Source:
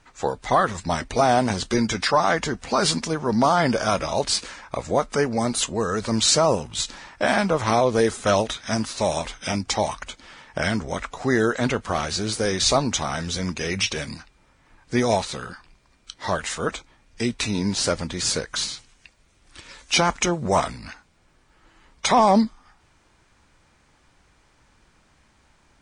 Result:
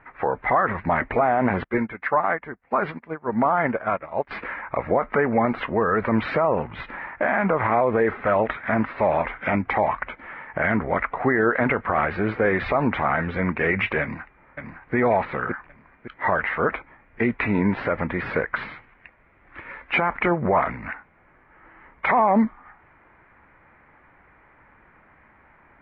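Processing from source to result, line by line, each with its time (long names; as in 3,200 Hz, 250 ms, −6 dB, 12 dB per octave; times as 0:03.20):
0:01.64–0:04.31: expander for the loud parts 2.5 to 1, over −36 dBFS
0:14.01–0:14.95: delay throw 560 ms, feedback 40%, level −7 dB
whole clip: elliptic low-pass filter 2,100 Hz, stop band 70 dB; spectral tilt +2 dB per octave; brickwall limiter −19 dBFS; level +8.5 dB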